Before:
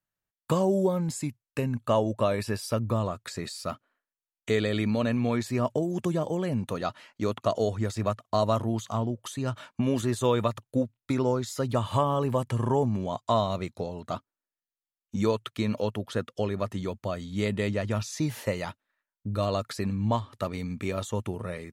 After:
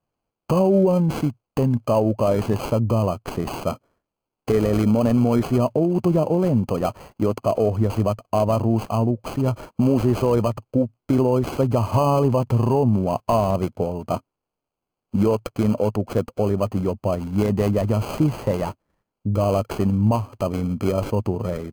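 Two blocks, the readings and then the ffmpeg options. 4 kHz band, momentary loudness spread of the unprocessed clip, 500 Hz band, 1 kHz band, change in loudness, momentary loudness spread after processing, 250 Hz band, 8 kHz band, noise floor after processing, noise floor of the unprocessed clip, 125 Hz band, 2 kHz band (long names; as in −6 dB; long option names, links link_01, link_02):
−1.0 dB, 9 LU, +7.0 dB, +5.0 dB, +7.5 dB, 7 LU, +8.5 dB, −1.0 dB, −85 dBFS, below −85 dBFS, +8.5 dB, −0.5 dB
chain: -filter_complex "[0:a]acrossover=split=1300[link_01][link_02];[link_02]acrusher=samples=24:mix=1:aa=0.000001[link_03];[link_01][link_03]amix=inputs=2:normalize=0,alimiter=level_in=17.5dB:limit=-1dB:release=50:level=0:latency=1,volume=-8dB"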